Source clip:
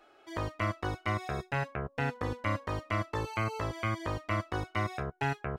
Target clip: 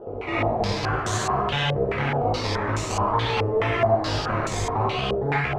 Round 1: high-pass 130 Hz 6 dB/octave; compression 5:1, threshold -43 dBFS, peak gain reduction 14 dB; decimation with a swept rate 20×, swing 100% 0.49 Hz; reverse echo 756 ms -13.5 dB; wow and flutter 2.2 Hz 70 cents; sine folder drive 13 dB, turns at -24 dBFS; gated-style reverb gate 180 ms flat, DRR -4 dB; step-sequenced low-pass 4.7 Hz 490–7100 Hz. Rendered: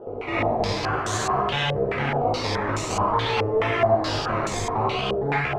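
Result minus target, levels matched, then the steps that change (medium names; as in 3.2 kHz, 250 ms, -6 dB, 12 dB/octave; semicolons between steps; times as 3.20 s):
125 Hz band -3.0 dB
remove: high-pass 130 Hz 6 dB/octave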